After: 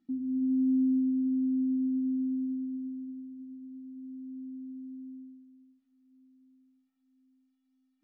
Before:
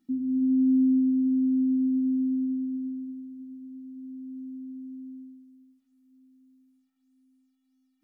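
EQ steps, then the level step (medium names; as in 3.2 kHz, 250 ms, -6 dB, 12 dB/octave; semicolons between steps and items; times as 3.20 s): dynamic bell 140 Hz, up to -4 dB, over -39 dBFS, Q 0.79; distance through air 130 m; -2.5 dB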